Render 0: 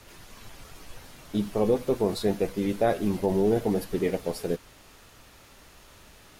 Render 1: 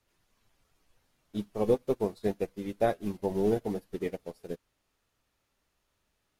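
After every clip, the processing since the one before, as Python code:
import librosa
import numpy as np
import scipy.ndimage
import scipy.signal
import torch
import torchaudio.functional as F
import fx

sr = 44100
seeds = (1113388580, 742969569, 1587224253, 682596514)

y = fx.upward_expand(x, sr, threshold_db=-36.0, expansion=2.5)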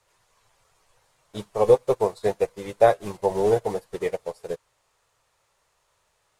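y = fx.graphic_eq_10(x, sr, hz=(125, 250, 500, 1000, 2000, 4000, 8000), db=(7, -10, 10, 11, 5, 4, 12))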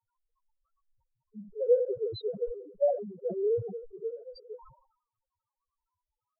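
y = fx.spec_topn(x, sr, count=1)
y = fx.env_phaser(y, sr, low_hz=590.0, high_hz=1300.0, full_db=-25.5)
y = fx.sustainer(y, sr, db_per_s=94.0)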